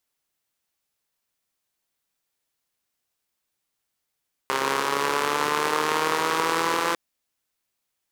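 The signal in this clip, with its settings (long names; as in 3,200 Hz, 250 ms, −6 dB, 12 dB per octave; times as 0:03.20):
pulse-train model of a four-cylinder engine, changing speed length 2.45 s, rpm 4,000, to 5,100, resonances 450/1,000 Hz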